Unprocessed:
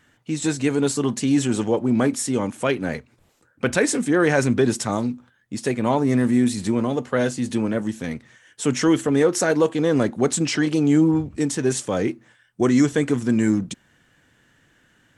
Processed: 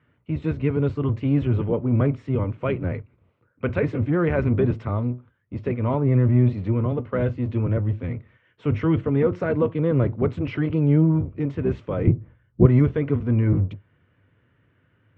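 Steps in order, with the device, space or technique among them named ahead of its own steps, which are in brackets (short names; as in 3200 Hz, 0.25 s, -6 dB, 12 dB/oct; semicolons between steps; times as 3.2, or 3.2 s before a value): sub-octave bass pedal (octaver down 1 oct, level +1 dB; speaker cabinet 90–2300 Hz, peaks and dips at 100 Hz +8 dB, 210 Hz -5 dB, 310 Hz -3 dB, 790 Hz -9 dB, 1700 Hz -10 dB); 12.07–12.66 tilt -4 dB/oct; gain -2 dB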